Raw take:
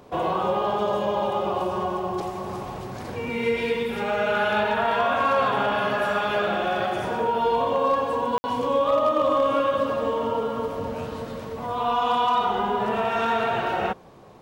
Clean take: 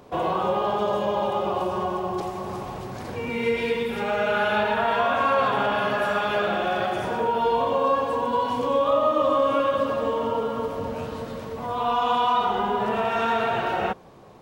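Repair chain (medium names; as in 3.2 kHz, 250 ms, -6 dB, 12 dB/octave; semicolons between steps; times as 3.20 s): clip repair -13.5 dBFS; room tone fill 8.38–8.44 s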